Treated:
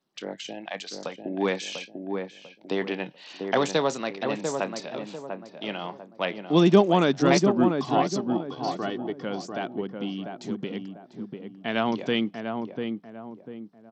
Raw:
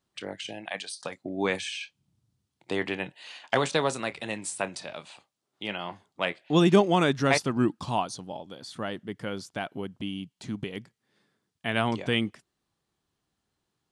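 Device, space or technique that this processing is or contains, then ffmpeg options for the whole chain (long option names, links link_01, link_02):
Bluetooth headset: -filter_complex "[0:a]asettb=1/sr,asplit=3[link_01][link_02][link_03];[link_01]atrim=end=7.704[link_04];[link_02]atrim=start=7.7:end=9.22,asetpts=PTS-STARTPTS,afade=type=in:duration=0.004:curve=qsin,afade=type=out:start_time=1.516:duration=0.004:curve=qsin,aecho=1:1:2.7:0.62,atrim=end_sample=67032[link_05];[link_03]atrim=start=9.216[link_06];[link_04][link_05]acrossfade=duration=0.004:curve1=hsin:curve2=qsin[link_07];[link_07][link_06]acrossfade=duration=0.004:curve1=qsin:curve2=hsin,highpass=frequency=160:width=0.5412,highpass=frequency=160:width=1.3066,equalizer=frequency=2100:width_type=o:width=1.7:gain=-5.5,asplit=2[link_08][link_09];[link_09]adelay=695,lowpass=frequency=1100:poles=1,volume=-4.5dB,asplit=2[link_10][link_11];[link_11]adelay=695,lowpass=frequency=1100:poles=1,volume=0.38,asplit=2[link_12][link_13];[link_13]adelay=695,lowpass=frequency=1100:poles=1,volume=0.38,asplit=2[link_14][link_15];[link_15]adelay=695,lowpass=frequency=1100:poles=1,volume=0.38,asplit=2[link_16][link_17];[link_17]adelay=695,lowpass=frequency=1100:poles=1,volume=0.38[link_18];[link_08][link_10][link_12][link_14][link_16][link_18]amix=inputs=6:normalize=0,aresample=16000,aresample=44100,volume=3dB" -ar 32000 -c:a sbc -b:a 64k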